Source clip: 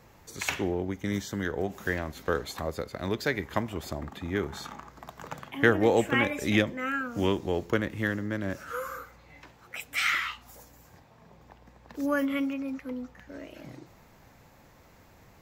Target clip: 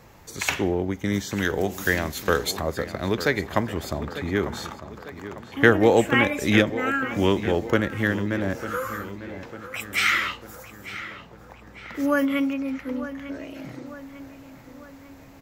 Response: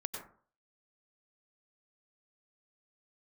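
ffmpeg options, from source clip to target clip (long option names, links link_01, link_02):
-filter_complex "[0:a]asplit=3[link_01][link_02][link_03];[link_01]afade=type=out:start_time=1.35:duration=0.02[link_04];[link_02]highshelf=frequency=3000:gain=11.5,afade=type=in:start_time=1.35:duration=0.02,afade=type=out:start_time=2.5:duration=0.02[link_05];[link_03]afade=type=in:start_time=2.5:duration=0.02[link_06];[link_04][link_05][link_06]amix=inputs=3:normalize=0,asettb=1/sr,asplit=3[link_07][link_08][link_09];[link_07]atrim=end=4.734[link_10];[link_08]atrim=start=4.73:end=5.57,asetpts=PTS-STARTPTS,afade=type=in:duration=0.004:curve=qsin,afade=type=out:start_time=0.836:duration=0.004:curve=qsin,acompressor=threshold=-47dB:ratio=6[link_11];[link_09]atrim=start=5.566[link_12];[link_10][link_11]acrossfade=duration=0.004:curve1=hsin:curve2=qsin[link_13];[link_13][link_12]acrossfade=duration=0.004:curve1=qsin:curve2=hsin,asplit=2[link_14][link_15];[link_15]adelay=899,lowpass=frequency=3900:poles=1,volume=-13dB,asplit=2[link_16][link_17];[link_17]adelay=899,lowpass=frequency=3900:poles=1,volume=0.52,asplit=2[link_18][link_19];[link_19]adelay=899,lowpass=frequency=3900:poles=1,volume=0.52,asplit=2[link_20][link_21];[link_21]adelay=899,lowpass=frequency=3900:poles=1,volume=0.52,asplit=2[link_22][link_23];[link_23]adelay=899,lowpass=frequency=3900:poles=1,volume=0.52[link_24];[link_14][link_16][link_18][link_20][link_22][link_24]amix=inputs=6:normalize=0,volume=5.5dB"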